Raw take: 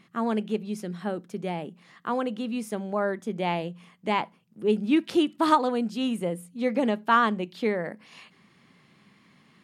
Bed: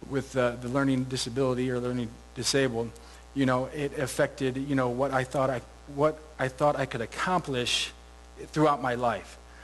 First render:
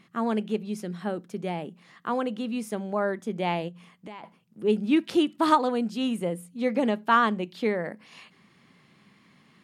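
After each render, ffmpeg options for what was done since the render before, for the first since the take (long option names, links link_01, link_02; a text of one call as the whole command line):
ffmpeg -i in.wav -filter_complex "[0:a]asplit=3[link_01][link_02][link_03];[link_01]afade=type=out:start_time=3.68:duration=0.02[link_04];[link_02]acompressor=threshold=-40dB:ratio=4:attack=3.2:release=140:knee=1:detection=peak,afade=type=in:start_time=3.68:duration=0.02,afade=type=out:start_time=4.23:duration=0.02[link_05];[link_03]afade=type=in:start_time=4.23:duration=0.02[link_06];[link_04][link_05][link_06]amix=inputs=3:normalize=0" out.wav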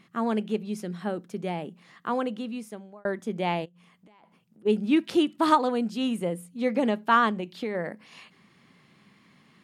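ffmpeg -i in.wav -filter_complex "[0:a]asplit=3[link_01][link_02][link_03];[link_01]afade=type=out:start_time=3.64:duration=0.02[link_04];[link_02]acompressor=threshold=-54dB:ratio=5:attack=3.2:release=140:knee=1:detection=peak,afade=type=in:start_time=3.64:duration=0.02,afade=type=out:start_time=4.65:duration=0.02[link_05];[link_03]afade=type=in:start_time=4.65:duration=0.02[link_06];[link_04][link_05][link_06]amix=inputs=3:normalize=0,asettb=1/sr,asplit=3[link_07][link_08][link_09];[link_07]atrim=end=7.304[link_10];[link_08]atrim=start=7.3:end=7.75,asetpts=PTS-STARTPTS,afade=type=in:duration=0.004:curve=qsin,afade=type=out:start_time=0.446:duration=0.004:curve=qsin,acompressor=threshold=-26dB:ratio=6:attack=3.2:release=140:knee=1:detection=peak[link_11];[link_09]atrim=start=7.746[link_12];[link_10][link_11]acrossfade=duration=0.004:curve1=hsin:curve2=qsin[link_13];[link_13][link_12]acrossfade=duration=0.004:curve1=qsin:curve2=hsin,asplit=2[link_14][link_15];[link_14]atrim=end=3.05,asetpts=PTS-STARTPTS,afade=type=out:start_time=2.23:duration=0.82[link_16];[link_15]atrim=start=3.05,asetpts=PTS-STARTPTS,afade=type=in:duration=0.004:curve=hsin[link_17];[link_16][link_17]concat=n=2:v=0:a=1" out.wav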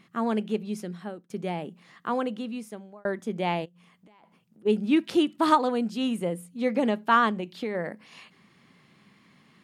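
ffmpeg -i in.wav -filter_complex "[0:a]asplit=2[link_01][link_02];[link_01]atrim=end=1.3,asetpts=PTS-STARTPTS,afade=type=out:start_time=0.78:duration=0.52:silence=0.112202[link_03];[link_02]atrim=start=1.3,asetpts=PTS-STARTPTS,afade=type=in:duration=0.004:curve=hsin:silence=0.112202[link_04];[link_03][link_04]concat=n=2:v=0:a=1" out.wav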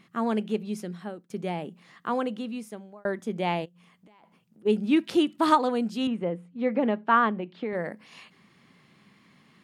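ffmpeg -i in.wav -filter_complex "[0:a]asettb=1/sr,asplit=3[link_01][link_02][link_03];[link_01]atrim=end=6.074[link_04];[link_02]atrim=start=6.07:end=7.73,asetpts=PTS-STARTPTS,afade=type=in:duration=0.004:curve=qsin,afade=type=out:start_time=1.656:duration=0.004:curve=qsin,highpass=130,lowpass=2300[link_05];[link_03]atrim=start=7.726[link_06];[link_04][link_05]acrossfade=duration=0.004:curve1=hsin:curve2=qsin[link_07];[link_07][link_06]acrossfade=duration=0.004:curve1=qsin:curve2=hsin" out.wav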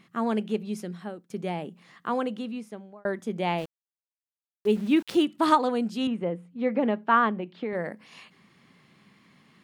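ffmpeg -i in.wav -filter_complex "[0:a]asettb=1/sr,asplit=3[link_01][link_02][link_03];[link_01]atrim=end=2.524[link_04];[link_02]atrim=start=2.52:end=3.06,asetpts=PTS-STARTPTS,afade=type=in:duration=0.004:curve=qsin,afade=type=out:start_time=0.536:duration=0.004:curve=qsin,highshelf=frequency=6700:gain=-11.5[link_05];[link_03]atrim=start=3.056[link_06];[link_04][link_05]acrossfade=duration=0.004:curve1=hsin:curve2=qsin[link_07];[link_07][link_06]acrossfade=duration=0.004:curve1=qsin:curve2=hsin,asettb=1/sr,asplit=3[link_08][link_09][link_10];[link_08]atrim=end=3.584[link_11];[link_09]atrim=start=3.58:end=5.25,asetpts=PTS-STARTPTS,afade=type=in:duration=0.004:curve=qsin,afade=type=out:start_time=1.666:duration=0.004:curve=qsin,aeval=exprs='val(0)*gte(abs(val(0)),0.00841)':channel_layout=same[link_12];[link_10]atrim=start=5.246[link_13];[link_11][link_12]acrossfade=duration=0.004:curve1=hsin:curve2=qsin[link_14];[link_14][link_13]acrossfade=duration=0.004:curve1=qsin:curve2=hsin" out.wav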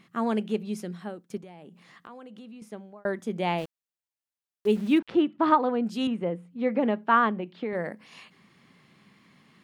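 ffmpeg -i in.wav -filter_complex "[0:a]asettb=1/sr,asplit=3[link_01][link_02][link_03];[link_01]atrim=end=1.374[link_04];[link_02]atrim=start=1.37:end=2.62,asetpts=PTS-STARTPTS,afade=type=in:duration=0.004:curve=qsin,afade=type=out:start_time=1.246:duration=0.004:curve=qsin,acompressor=threshold=-43dB:ratio=6:attack=3.2:release=140:knee=1:detection=peak[link_05];[link_03]atrim=start=2.616[link_06];[link_04][link_05]acrossfade=duration=0.004:curve1=hsin:curve2=qsin[link_07];[link_07][link_06]acrossfade=duration=0.004:curve1=qsin:curve2=hsin,asplit=3[link_08][link_09][link_10];[link_08]afade=type=out:start_time=4.98:duration=0.02[link_11];[link_09]lowpass=2100,afade=type=in:start_time=4.98:duration=0.02,afade=type=out:start_time=5.85:duration=0.02[link_12];[link_10]afade=type=in:start_time=5.85:duration=0.02[link_13];[link_11][link_12][link_13]amix=inputs=3:normalize=0" out.wav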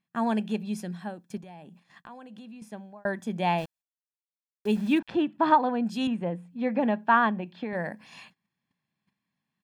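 ffmpeg -i in.wav -af "agate=range=-26dB:threshold=-53dB:ratio=16:detection=peak,aecho=1:1:1.2:0.5" out.wav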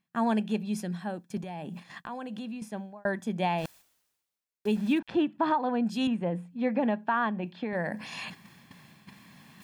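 ffmpeg -i in.wav -af "areverse,acompressor=mode=upward:threshold=-29dB:ratio=2.5,areverse,alimiter=limit=-17dB:level=0:latency=1:release=202" out.wav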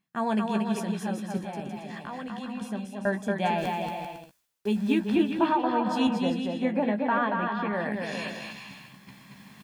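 ffmpeg -i in.wav -filter_complex "[0:a]asplit=2[link_01][link_02];[link_02]adelay=15,volume=-7dB[link_03];[link_01][link_03]amix=inputs=2:normalize=0,aecho=1:1:230|391|503.7|582.6|637.8:0.631|0.398|0.251|0.158|0.1" out.wav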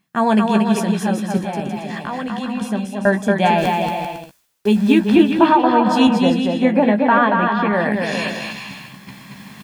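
ffmpeg -i in.wav -af "volume=11.5dB,alimiter=limit=-2dB:level=0:latency=1" out.wav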